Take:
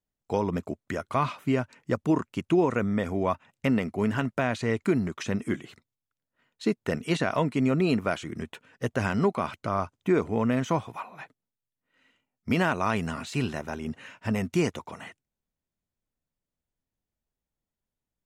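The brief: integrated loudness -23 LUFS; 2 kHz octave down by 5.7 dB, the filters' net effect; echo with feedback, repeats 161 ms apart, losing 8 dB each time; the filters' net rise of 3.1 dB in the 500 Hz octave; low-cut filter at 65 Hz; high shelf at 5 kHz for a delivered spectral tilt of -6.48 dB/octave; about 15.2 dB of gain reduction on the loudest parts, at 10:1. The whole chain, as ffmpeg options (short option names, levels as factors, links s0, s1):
-af "highpass=65,equalizer=f=500:t=o:g=4.5,equalizer=f=2000:t=o:g=-7.5,highshelf=f=5000:g=-5,acompressor=threshold=0.0251:ratio=10,aecho=1:1:161|322|483|644|805:0.398|0.159|0.0637|0.0255|0.0102,volume=5.62"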